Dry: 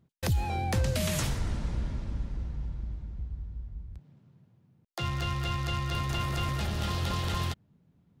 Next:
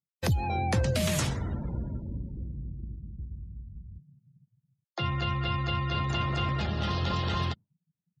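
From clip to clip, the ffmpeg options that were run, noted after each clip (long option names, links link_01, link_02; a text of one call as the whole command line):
ffmpeg -i in.wav -af "afftdn=noise_reduction=35:noise_floor=-43,highpass=79,volume=3dB" out.wav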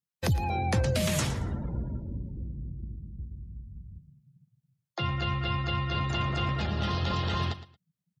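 ffmpeg -i in.wav -af "aecho=1:1:113|226:0.188|0.0377" out.wav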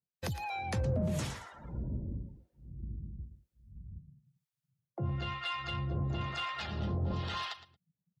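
ffmpeg -i in.wav -filter_complex "[0:a]acrossover=split=750[link_01][link_02];[link_01]aeval=exprs='val(0)*(1-1/2+1/2*cos(2*PI*1*n/s))':channel_layout=same[link_03];[link_02]aeval=exprs='val(0)*(1-1/2-1/2*cos(2*PI*1*n/s))':channel_layout=same[link_04];[link_03][link_04]amix=inputs=2:normalize=0,asplit=2[link_05][link_06];[link_06]asoftclip=type=tanh:threshold=-32dB,volume=-4.5dB[link_07];[link_05][link_07]amix=inputs=2:normalize=0,volume=-4.5dB" out.wav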